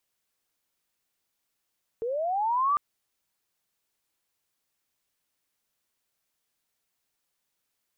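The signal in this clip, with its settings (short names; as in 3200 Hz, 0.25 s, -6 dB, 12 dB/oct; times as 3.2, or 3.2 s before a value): chirp linear 440 Hz -> 1200 Hz -27.5 dBFS -> -20.5 dBFS 0.75 s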